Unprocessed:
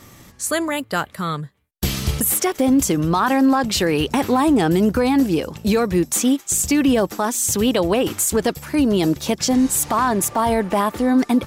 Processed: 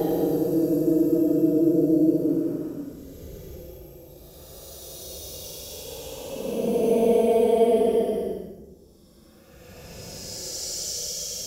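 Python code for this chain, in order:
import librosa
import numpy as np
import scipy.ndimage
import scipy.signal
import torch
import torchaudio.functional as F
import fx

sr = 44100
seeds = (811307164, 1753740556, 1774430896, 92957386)

y = fx.paulstretch(x, sr, seeds[0], factor=27.0, window_s=0.05, from_s=9.04)
y = fx.graphic_eq(y, sr, hz=(125, 250, 500, 1000, 2000, 4000, 8000), db=(-11, -4, 9, -9, -12, -9, -7))
y = F.gain(torch.from_numpy(y), -3.0).numpy()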